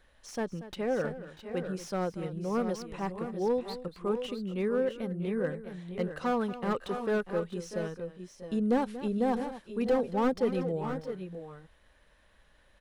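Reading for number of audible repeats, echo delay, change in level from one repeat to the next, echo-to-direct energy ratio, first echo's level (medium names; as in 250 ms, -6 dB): 2, 235 ms, no regular repeats, -7.5 dB, -14.5 dB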